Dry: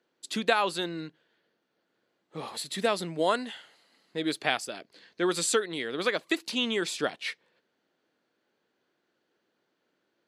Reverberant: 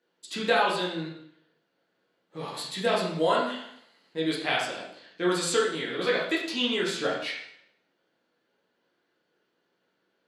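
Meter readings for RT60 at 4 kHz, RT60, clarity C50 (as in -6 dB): 0.65 s, 0.70 s, 3.0 dB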